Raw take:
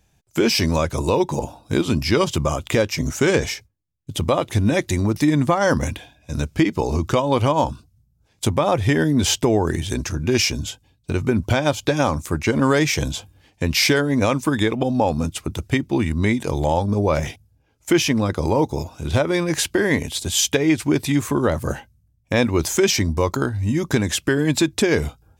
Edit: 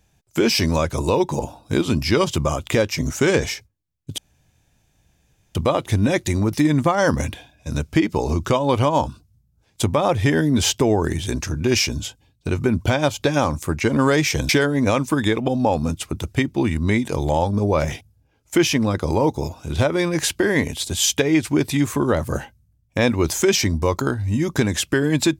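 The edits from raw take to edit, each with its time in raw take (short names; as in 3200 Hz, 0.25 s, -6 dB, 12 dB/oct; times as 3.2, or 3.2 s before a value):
4.18 insert room tone 1.37 s
13.12–13.84 cut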